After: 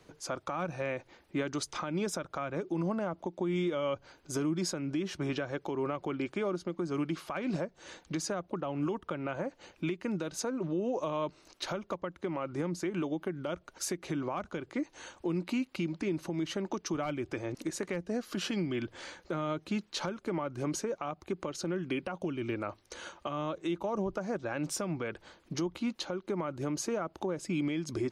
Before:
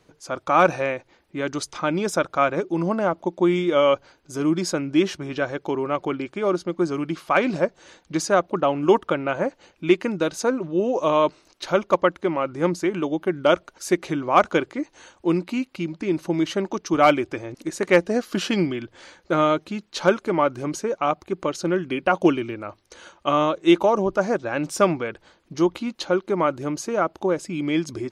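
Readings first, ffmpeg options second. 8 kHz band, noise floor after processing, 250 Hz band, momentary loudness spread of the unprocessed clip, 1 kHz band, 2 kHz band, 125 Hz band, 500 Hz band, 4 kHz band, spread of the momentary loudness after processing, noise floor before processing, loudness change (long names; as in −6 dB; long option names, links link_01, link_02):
−5.5 dB, −65 dBFS, −10.5 dB, 10 LU, −16.0 dB, −13.5 dB, −7.0 dB, −13.5 dB, −9.5 dB, 6 LU, −61 dBFS, −12.5 dB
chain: -filter_complex "[0:a]acrossover=split=190[link_01][link_02];[link_02]acompressor=threshold=-25dB:ratio=10[link_03];[link_01][link_03]amix=inputs=2:normalize=0,alimiter=limit=-24dB:level=0:latency=1:release=291"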